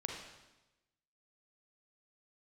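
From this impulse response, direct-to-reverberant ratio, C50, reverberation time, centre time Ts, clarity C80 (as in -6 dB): 0.5 dB, 2.0 dB, 1.0 s, 50 ms, 5.0 dB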